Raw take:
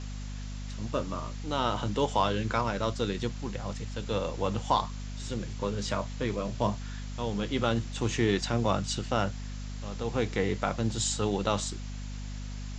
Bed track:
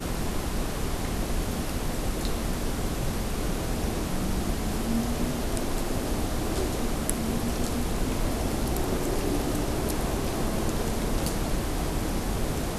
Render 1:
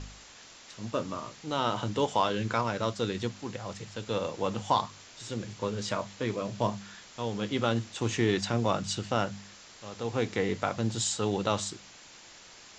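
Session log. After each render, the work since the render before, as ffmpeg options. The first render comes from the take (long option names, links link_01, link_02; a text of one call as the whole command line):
ffmpeg -i in.wav -af "bandreject=frequency=50:width_type=h:width=4,bandreject=frequency=100:width_type=h:width=4,bandreject=frequency=150:width_type=h:width=4,bandreject=frequency=200:width_type=h:width=4,bandreject=frequency=250:width_type=h:width=4" out.wav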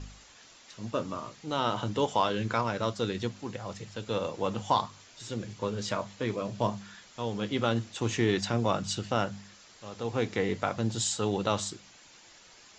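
ffmpeg -i in.wav -af "afftdn=noise_reduction=6:noise_floor=-52" out.wav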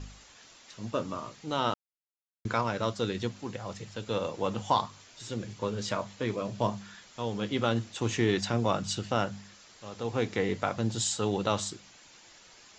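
ffmpeg -i in.wav -filter_complex "[0:a]asplit=3[link_01][link_02][link_03];[link_01]atrim=end=1.74,asetpts=PTS-STARTPTS,afade=type=out:start_time=1.736:duration=0.004:curve=hsin[link_04];[link_02]atrim=start=1.74:end=2.45,asetpts=PTS-STARTPTS,volume=0[link_05];[link_03]atrim=start=2.45,asetpts=PTS-STARTPTS,afade=type=in:duration=0.004:curve=hsin[link_06];[link_04][link_05][link_06]concat=n=3:v=0:a=1" out.wav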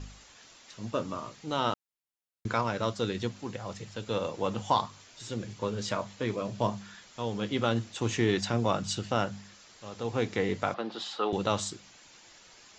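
ffmpeg -i in.wav -filter_complex "[0:a]asettb=1/sr,asplit=3[link_01][link_02][link_03];[link_01]atrim=end=10.744[link_04];[link_02]atrim=start=10.74:end=11.33,asetpts=PTS-STARTPTS,afade=type=in:duration=0.004:curve=qsin,afade=type=out:start_time=0.586:duration=0.004:curve=qsin,highpass=frequency=260:width=0.5412,highpass=frequency=260:width=1.3066,equalizer=frequency=260:width_type=q:width=4:gain=-4,equalizer=frequency=760:width_type=q:width=4:gain=5,equalizer=frequency=1200:width_type=q:width=4:gain=9,lowpass=frequency=4100:width=0.5412,lowpass=frequency=4100:width=1.3066[link_05];[link_03]atrim=start=11.326[link_06];[link_04][link_05]acrossfade=duration=0.004:curve1=hsin:curve2=qsin[link_07];[link_07][link_06]acrossfade=duration=0.004:curve1=qsin:curve2=hsin" out.wav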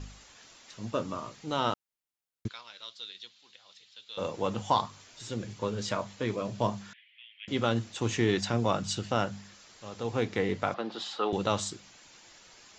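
ffmpeg -i in.wav -filter_complex "[0:a]asplit=3[link_01][link_02][link_03];[link_01]afade=type=out:start_time=2.47:duration=0.02[link_04];[link_02]bandpass=frequency=3700:width_type=q:width=3.2,afade=type=in:start_time=2.47:duration=0.02,afade=type=out:start_time=4.17:duration=0.02[link_05];[link_03]afade=type=in:start_time=4.17:duration=0.02[link_06];[link_04][link_05][link_06]amix=inputs=3:normalize=0,asettb=1/sr,asplit=3[link_07][link_08][link_09];[link_07]atrim=end=6.934[link_10];[link_08]atrim=start=6.93:end=7.48,asetpts=PTS-STARTPTS,afade=type=in:duration=0.004:curve=qsin,afade=type=out:start_time=0.546:duration=0.004:curve=qsin,asuperpass=centerf=2500:order=8:qfactor=1.9[link_11];[link_09]atrim=start=7.476[link_12];[link_10][link_11]acrossfade=duration=0.004:curve1=hsin:curve2=qsin[link_13];[link_13][link_12]acrossfade=duration=0.004:curve1=qsin:curve2=hsin,asettb=1/sr,asplit=3[link_14][link_15][link_16];[link_14]atrim=end=10.204[link_17];[link_15]atrim=start=10.2:end=10.72,asetpts=PTS-STARTPTS,afade=type=in:duration=0.004:curve=qsin,afade=type=out:start_time=0.516:duration=0.004:curve=qsin,adynamicsmooth=sensitivity=4.5:basefreq=7700[link_18];[link_16]atrim=start=10.716[link_19];[link_17][link_18]acrossfade=duration=0.004:curve1=hsin:curve2=qsin[link_20];[link_20][link_19]acrossfade=duration=0.004:curve1=qsin:curve2=hsin" out.wav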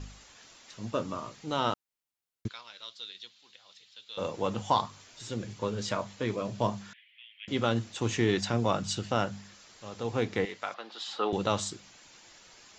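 ffmpeg -i in.wav -filter_complex "[0:a]asettb=1/sr,asplit=3[link_01][link_02][link_03];[link_01]atrim=end=10.454[link_04];[link_02]atrim=start=10.45:end=11.08,asetpts=PTS-STARTPTS,afade=type=in:duration=0.004:curve=qsin,afade=type=out:start_time=0.626:duration=0.004:curve=qsin,highpass=frequency=1500:poles=1[link_05];[link_03]atrim=start=11.076[link_06];[link_04][link_05]acrossfade=duration=0.004:curve1=hsin:curve2=qsin[link_07];[link_07][link_06]acrossfade=duration=0.004:curve1=qsin:curve2=hsin" out.wav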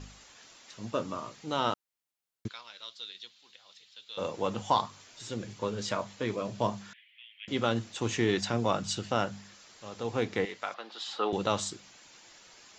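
ffmpeg -i in.wav -af "lowshelf=frequency=120:gain=-6" out.wav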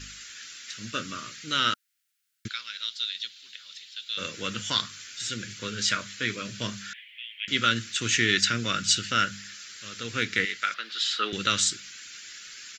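ffmpeg -i in.wav -af "firequalizer=gain_entry='entry(230,0);entry(570,-9);entry(820,-21);entry(1400,12)':delay=0.05:min_phase=1" out.wav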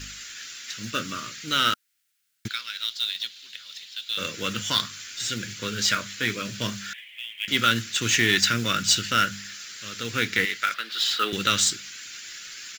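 ffmpeg -i in.wav -filter_complex "[0:a]asplit=2[link_01][link_02];[link_02]asoftclip=type=tanh:threshold=-21dB,volume=-5.5dB[link_03];[link_01][link_03]amix=inputs=2:normalize=0,acrusher=bits=4:mode=log:mix=0:aa=0.000001" out.wav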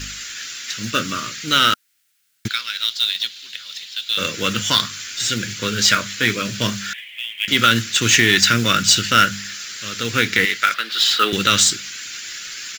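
ffmpeg -i in.wav -af "volume=8dB,alimiter=limit=-2dB:level=0:latency=1" out.wav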